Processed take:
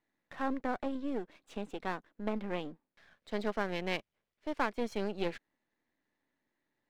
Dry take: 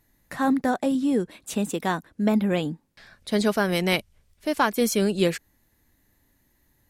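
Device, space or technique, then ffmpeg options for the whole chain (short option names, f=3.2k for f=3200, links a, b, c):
crystal radio: -af "highpass=260,lowpass=3k,aeval=exprs='if(lt(val(0),0),0.251*val(0),val(0))':c=same,volume=-8dB"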